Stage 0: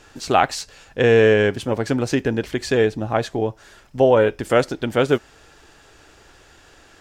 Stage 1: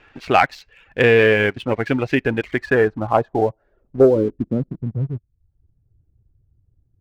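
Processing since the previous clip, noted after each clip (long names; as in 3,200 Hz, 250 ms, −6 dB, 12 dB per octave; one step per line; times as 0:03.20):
low-pass filter sweep 2,400 Hz → 110 Hz, 0:02.42–0:05.16
reverb reduction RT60 0.59 s
leveller curve on the samples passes 1
level −2.5 dB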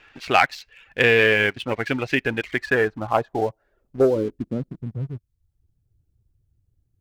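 tilt shelving filter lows −5 dB, about 1,400 Hz
level −1 dB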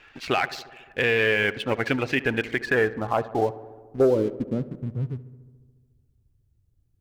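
brickwall limiter −11.5 dBFS, peak gain reduction 10 dB
feedback echo with a low-pass in the loop 71 ms, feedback 76%, low-pass 2,400 Hz, level −17 dB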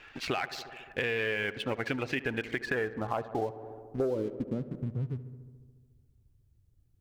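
downward compressor 3 to 1, threshold −31 dBFS, peak gain reduction 12 dB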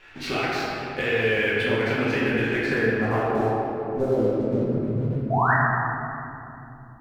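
sound drawn into the spectrogram rise, 0:05.30–0:05.54, 620–2,000 Hz −27 dBFS
in parallel at −10 dB: dead-zone distortion −52 dBFS
on the sum: rectangular room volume 120 cubic metres, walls hard, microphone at 1.1 metres
level −2.5 dB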